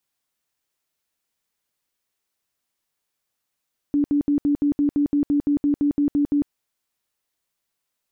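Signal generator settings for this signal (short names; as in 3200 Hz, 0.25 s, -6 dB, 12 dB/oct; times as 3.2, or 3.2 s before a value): tone bursts 289 Hz, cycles 29, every 0.17 s, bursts 15, -16 dBFS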